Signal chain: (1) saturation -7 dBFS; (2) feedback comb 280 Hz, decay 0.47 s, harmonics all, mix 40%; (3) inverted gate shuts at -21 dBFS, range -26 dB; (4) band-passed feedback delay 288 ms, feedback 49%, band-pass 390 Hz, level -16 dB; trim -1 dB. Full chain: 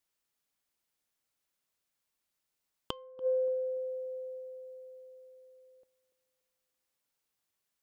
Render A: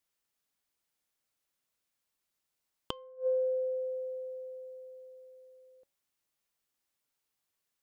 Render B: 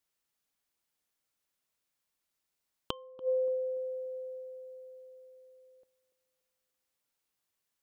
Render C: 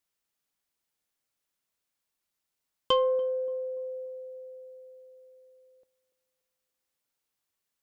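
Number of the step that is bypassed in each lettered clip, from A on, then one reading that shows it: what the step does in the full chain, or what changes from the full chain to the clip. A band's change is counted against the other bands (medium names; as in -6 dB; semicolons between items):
4, echo-to-direct -21.0 dB to none; 1, distortion -25 dB; 3, crest factor change -2.5 dB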